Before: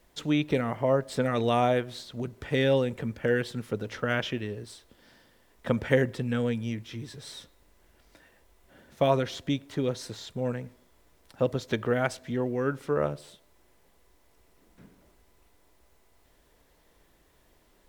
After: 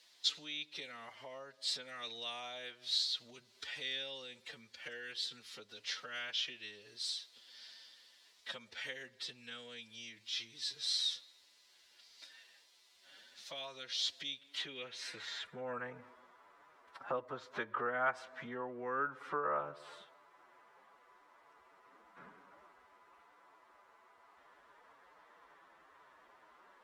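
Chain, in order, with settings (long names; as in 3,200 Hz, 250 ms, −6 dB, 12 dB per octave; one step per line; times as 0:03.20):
phase-vocoder stretch with locked phases 1.5×
downward compressor 3 to 1, threshold −39 dBFS, peak gain reduction 16 dB
band-pass filter sweep 4,300 Hz → 1,200 Hz, 0:14.22–0:15.87
level +12.5 dB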